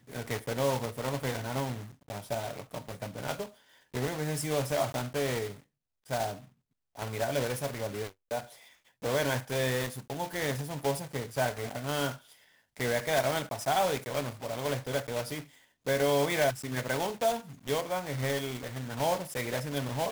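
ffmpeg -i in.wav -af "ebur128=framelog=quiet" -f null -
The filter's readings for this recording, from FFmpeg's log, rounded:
Integrated loudness:
  I:         -32.4 LUFS
  Threshold: -42.8 LUFS
Loudness range:
  LRA:         5.2 LU
  Threshold: -52.8 LUFS
  LRA low:   -35.9 LUFS
  LRA high:  -30.8 LUFS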